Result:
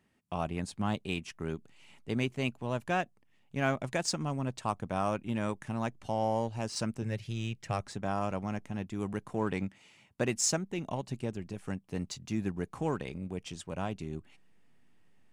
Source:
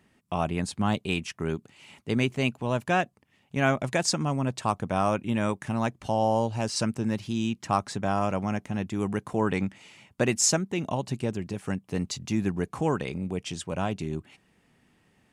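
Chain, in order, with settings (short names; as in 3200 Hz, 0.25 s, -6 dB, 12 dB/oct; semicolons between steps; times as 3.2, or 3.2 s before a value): 7.02–7.81 ten-band EQ 125 Hz +8 dB, 250 Hz -10 dB, 500 Hz +7 dB, 1000 Hz -11 dB, 2000 Hz +7 dB; in parallel at -8.5 dB: backlash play -25 dBFS; on the sum: gain -8.5 dB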